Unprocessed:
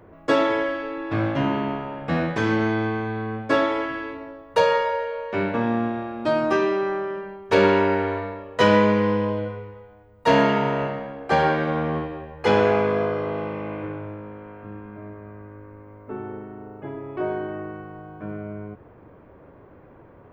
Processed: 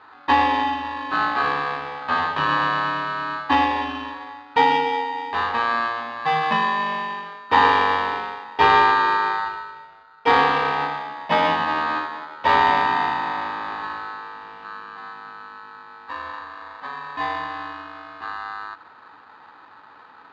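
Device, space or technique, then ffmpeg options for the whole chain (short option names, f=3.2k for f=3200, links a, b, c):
ring modulator pedal into a guitar cabinet: -af "aeval=exprs='val(0)*sgn(sin(2*PI*1400*n/s))':c=same,highpass=89,equalizer=f=95:t=q:w=4:g=4,equalizer=f=290:t=q:w=4:g=7,equalizer=f=490:t=q:w=4:g=3,equalizer=f=860:t=q:w=4:g=8,equalizer=f=1.3k:t=q:w=4:g=6,equalizer=f=2.1k:t=q:w=4:g=-8,lowpass=f=3.4k:w=0.5412,lowpass=f=3.4k:w=1.3066,volume=-1dB"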